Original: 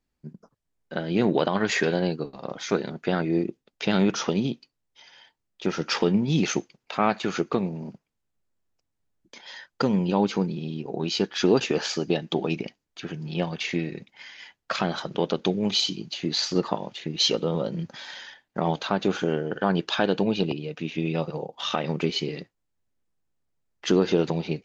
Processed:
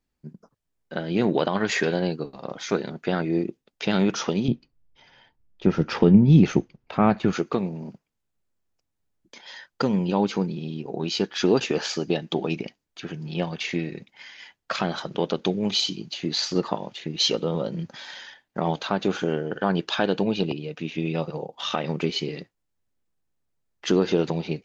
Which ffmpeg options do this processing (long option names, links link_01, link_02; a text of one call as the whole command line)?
ffmpeg -i in.wav -filter_complex "[0:a]asettb=1/sr,asplit=3[link_01][link_02][link_03];[link_01]atrim=end=4.484[link_04];[link_02]atrim=start=4.48:end=7.33,asetpts=PTS-STARTPTS,afade=type=in:duration=0.004:curve=qsin,afade=type=out:start_time=2.846:duration=0.004:curve=qsin,aemphasis=mode=reproduction:type=riaa[link_05];[link_03]atrim=start=7.326[link_06];[link_04][link_05]acrossfade=duration=0.004:curve1=hsin:curve2=qsin[link_07];[link_07][link_06]acrossfade=duration=0.004:curve1=qsin:curve2=hsin" out.wav